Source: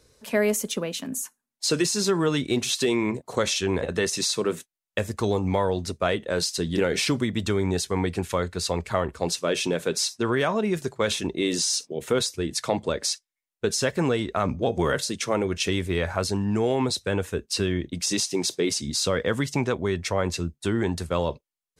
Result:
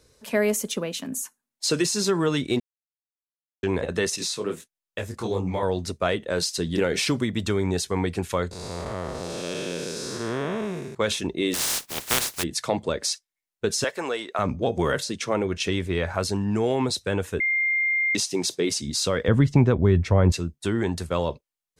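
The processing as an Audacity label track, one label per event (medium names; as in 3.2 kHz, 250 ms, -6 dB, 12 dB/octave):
2.600000	3.630000	mute
4.160000	5.630000	detune thickener each way 56 cents
8.510000	10.950000	spectral blur width 363 ms
11.530000	12.420000	spectral contrast reduction exponent 0.15
13.840000	14.390000	high-pass 500 Hz
15.030000	16.140000	treble shelf 8.7 kHz -9.5 dB
17.400000	18.150000	bleep 2.11 kHz -20 dBFS
19.280000	20.320000	RIAA curve playback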